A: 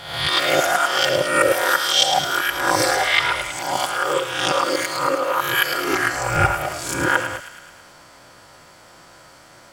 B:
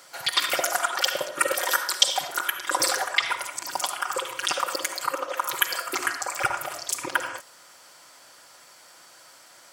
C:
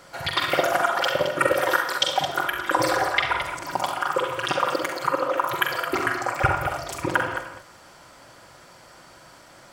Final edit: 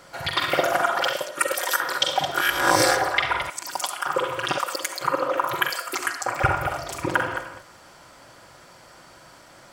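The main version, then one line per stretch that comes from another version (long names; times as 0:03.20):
C
0:01.13–0:01.80: punch in from B
0:02.38–0:02.96: punch in from A, crossfade 0.10 s
0:03.50–0:04.06: punch in from B
0:04.58–0:05.01: punch in from B
0:05.70–0:06.26: punch in from B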